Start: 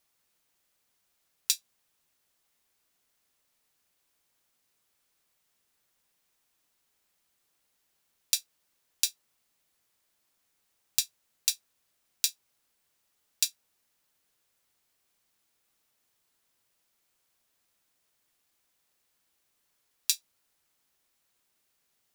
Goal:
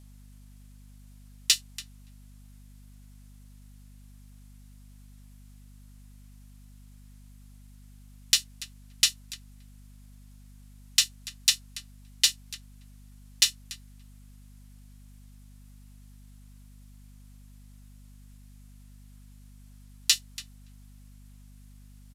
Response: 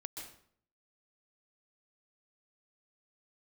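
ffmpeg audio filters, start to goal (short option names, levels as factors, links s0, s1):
-filter_complex "[0:a]aresample=32000,aresample=44100,asplit=2[s0][s1];[s1]adelay=285,lowpass=f=1300:p=1,volume=0.316,asplit=2[s2][s3];[s3]adelay=285,lowpass=f=1300:p=1,volume=0.15[s4];[s2][s4]amix=inputs=2:normalize=0[s5];[s0][s5]amix=inputs=2:normalize=0,acrossover=split=7500[s6][s7];[s7]acompressor=threshold=0.0178:ratio=4:attack=1:release=60[s8];[s6][s8]amix=inputs=2:normalize=0,equalizer=f=11000:w=1.1:g=4.5,asplit=2[s9][s10];[s10]asetrate=33038,aresample=44100,atempo=1.33484,volume=0.794[s11];[s9][s11]amix=inputs=2:normalize=0,asubboost=boost=7.5:cutoff=100,asplit=2[s12][s13];[s13]asoftclip=type=hard:threshold=0.0891,volume=0.596[s14];[s12][s14]amix=inputs=2:normalize=0,aeval=exprs='val(0)+0.00251*(sin(2*PI*50*n/s)+sin(2*PI*2*50*n/s)/2+sin(2*PI*3*50*n/s)/3+sin(2*PI*4*50*n/s)/4+sin(2*PI*5*50*n/s)/5)':c=same,volume=1.33"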